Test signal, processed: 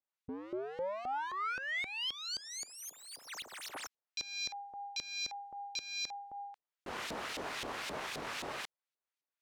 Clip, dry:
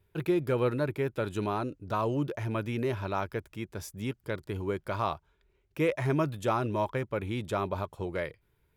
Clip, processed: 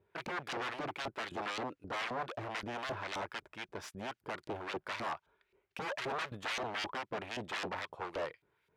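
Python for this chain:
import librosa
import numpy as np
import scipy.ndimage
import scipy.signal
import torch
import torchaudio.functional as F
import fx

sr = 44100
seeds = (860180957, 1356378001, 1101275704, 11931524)

y = fx.tracing_dist(x, sr, depth_ms=0.051)
y = 10.0 ** (-33.0 / 20.0) * (np.abs((y / 10.0 ** (-33.0 / 20.0) + 3.0) % 4.0 - 2.0) - 1.0)
y = fx.filter_lfo_bandpass(y, sr, shape='saw_up', hz=3.8, low_hz=430.0, high_hz=3600.0, q=0.81)
y = F.gain(torch.from_numpy(y), 4.5).numpy()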